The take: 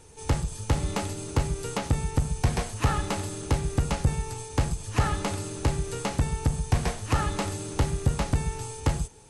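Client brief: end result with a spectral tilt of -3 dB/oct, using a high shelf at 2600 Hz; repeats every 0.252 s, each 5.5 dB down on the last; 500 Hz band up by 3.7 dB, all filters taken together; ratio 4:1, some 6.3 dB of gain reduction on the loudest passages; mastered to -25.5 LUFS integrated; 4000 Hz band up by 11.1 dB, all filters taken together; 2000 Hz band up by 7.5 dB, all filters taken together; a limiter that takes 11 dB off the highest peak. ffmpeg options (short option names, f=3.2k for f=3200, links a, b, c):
-af "equalizer=f=500:t=o:g=4,equalizer=f=2k:t=o:g=4,highshelf=f=2.6k:g=7.5,equalizer=f=4k:t=o:g=6.5,acompressor=threshold=-24dB:ratio=4,alimiter=limit=-22dB:level=0:latency=1,aecho=1:1:252|504|756|1008|1260|1512|1764:0.531|0.281|0.149|0.079|0.0419|0.0222|0.0118,volume=5dB"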